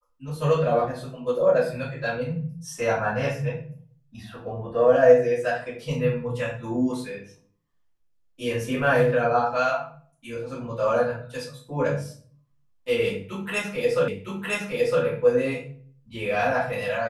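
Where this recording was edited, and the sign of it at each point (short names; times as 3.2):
14.08 repeat of the last 0.96 s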